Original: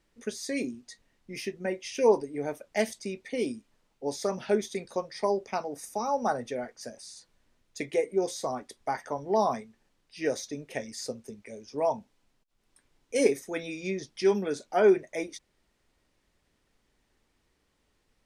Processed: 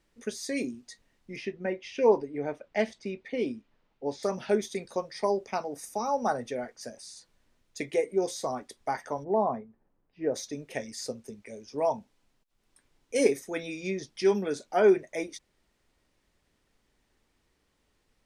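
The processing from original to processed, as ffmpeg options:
ffmpeg -i in.wav -filter_complex "[0:a]asettb=1/sr,asplit=3[link_01][link_02][link_03];[link_01]atrim=end=1.364[link_04];[link_02]atrim=start=1.36:end=4.23,asetpts=PTS-STARTPTS,afade=type=in:duration=0.004:curve=qsin,afade=type=out:start_time=2.866:duration=0.004:curve=qsin,lowpass=3500[link_05];[link_03]atrim=start=4.226[link_06];[link_04][link_05]acrossfade=duration=0.004:curve1=hsin:curve2=qsin[link_07];[link_07][link_06]acrossfade=duration=0.004:curve1=qsin:curve2=hsin,asplit=3[link_08][link_09][link_10];[link_08]afade=type=out:start_time=9.23:duration=0.02[link_11];[link_09]lowpass=1000,afade=type=in:start_time=9.23:duration=0.02,afade=type=out:start_time=10.34:duration=0.02[link_12];[link_10]afade=type=in:start_time=10.34:duration=0.02[link_13];[link_11][link_12][link_13]amix=inputs=3:normalize=0" out.wav

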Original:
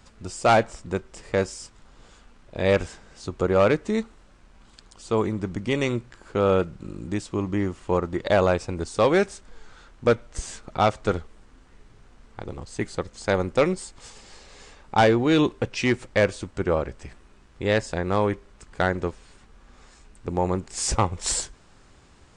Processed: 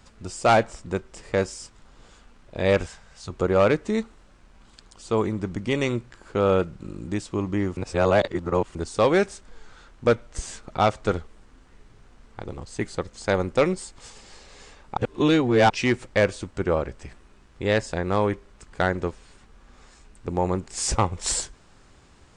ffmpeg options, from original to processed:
ffmpeg -i in.wav -filter_complex "[0:a]asettb=1/sr,asplit=3[link_01][link_02][link_03];[link_01]atrim=end=2.864[link_04];[link_02]atrim=start=2.86:end=3.3,asetpts=PTS-STARTPTS,afade=type=in:duration=0.004:curve=qsin,afade=type=out:start_time=0.436:duration=0.004:curve=qsin,equalizer=frequency=320:width=1.5:gain=-14[link_05];[link_03]atrim=start=3.296[link_06];[link_04][link_05]acrossfade=duration=0.004:curve1=hsin:curve2=qsin[link_07];[link_07][link_06]acrossfade=duration=0.004:curve1=qsin:curve2=hsin,asplit=5[link_08][link_09][link_10][link_11][link_12];[link_08]atrim=end=7.772[link_13];[link_09]atrim=start=7.768:end=8.752,asetpts=PTS-STARTPTS,areverse[link_14];[link_10]atrim=start=8.748:end=14.972[link_15];[link_11]atrim=start=14.968:end=15.702,asetpts=PTS-STARTPTS,areverse[link_16];[link_12]atrim=start=15.698[link_17];[link_13][link_14]acrossfade=duration=0.004:curve1=hsin:curve2=hsin[link_18];[link_18][link_15]acrossfade=duration=0.004:curve1=hsin:curve2=hsin[link_19];[link_19][link_16]acrossfade=duration=0.004:curve1=hsin:curve2=hsin[link_20];[link_20][link_17]acrossfade=duration=0.004:curve1=hsin:curve2=hsin" out.wav

